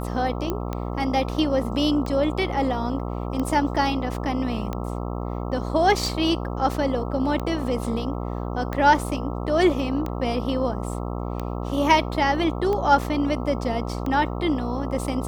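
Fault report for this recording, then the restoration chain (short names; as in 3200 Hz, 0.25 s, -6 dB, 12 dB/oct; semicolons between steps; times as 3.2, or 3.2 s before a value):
buzz 60 Hz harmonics 22 -29 dBFS
tick 45 rpm -16 dBFS
0.5 pop -13 dBFS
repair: de-click; de-hum 60 Hz, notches 22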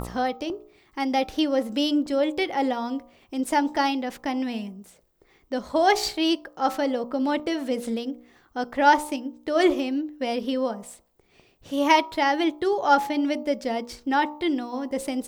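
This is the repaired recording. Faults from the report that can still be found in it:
none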